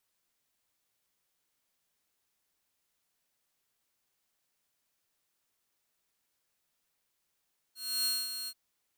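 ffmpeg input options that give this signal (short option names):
-f lavfi -i "aevalsrc='0.0562*(2*mod(4260*t,1)-1)':d=0.784:s=44100,afade=t=in:d=0.301,afade=t=out:st=0.301:d=0.226:silence=0.355,afade=t=out:st=0.73:d=0.054"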